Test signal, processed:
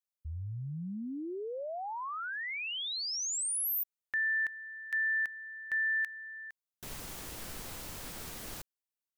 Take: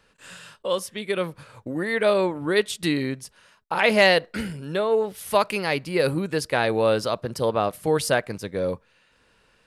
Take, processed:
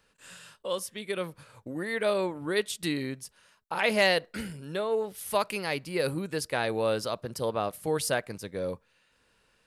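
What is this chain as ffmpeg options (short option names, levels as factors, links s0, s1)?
-af "highshelf=f=6300:g=7,volume=0.447"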